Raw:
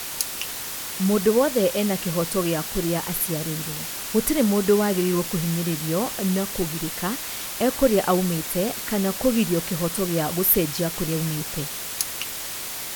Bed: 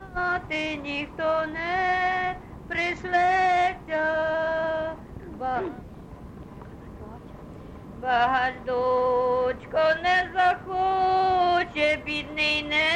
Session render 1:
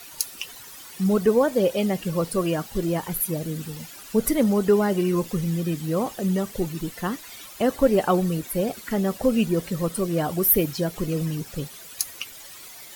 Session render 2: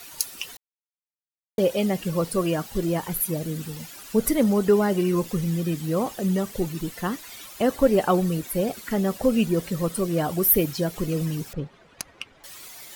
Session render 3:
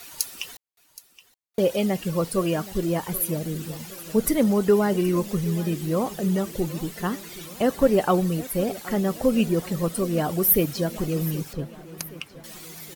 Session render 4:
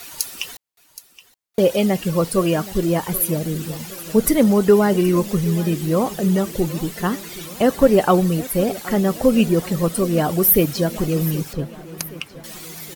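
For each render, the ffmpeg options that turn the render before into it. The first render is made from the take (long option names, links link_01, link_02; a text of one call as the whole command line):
ffmpeg -i in.wav -af "afftdn=noise_reduction=14:noise_floor=-32" out.wav
ffmpeg -i in.wav -filter_complex "[0:a]asettb=1/sr,asplit=3[link_01][link_02][link_03];[link_01]atrim=end=11.534[link_04];[link_02]atrim=start=11.53:end=12.44,asetpts=PTS-STARTPTS,afade=type=in:duration=0.004:curve=qsin,afade=type=out:start_time=0.906:duration=0.004:curve=qsin,adynamicsmooth=sensitivity=1.5:basefreq=1600[link_05];[link_03]atrim=start=12.436[link_06];[link_04][link_05]acrossfade=duration=0.004:curve1=hsin:curve2=qsin[link_07];[link_07][link_06]acrossfade=duration=0.004:curve1=qsin:curve2=hsin,asplit=3[link_08][link_09][link_10];[link_08]atrim=end=0.57,asetpts=PTS-STARTPTS,afade=type=out:start_time=0.566:duration=0.004:curve=hsin[link_11];[link_09]atrim=start=0.57:end=1.58,asetpts=PTS-STARTPTS,volume=0[link_12];[link_10]atrim=start=1.58,asetpts=PTS-STARTPTS,afade=type=in:duration=0.004:curve=hsin[link_13];[link_11][link_12][link_13]concat=n=3:v=0:a=1" out.wav
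ffmpeg -i in.wav -af "aecho=1:1:772|1544|2316|3088|3860:0.126|0.068|0.0367|0.0198|0.0107" out.wav
ffmpeg -i in.wav -af "volume=5.5dB,alimiter=limit=-2dB:level=0:latency=1" out.wav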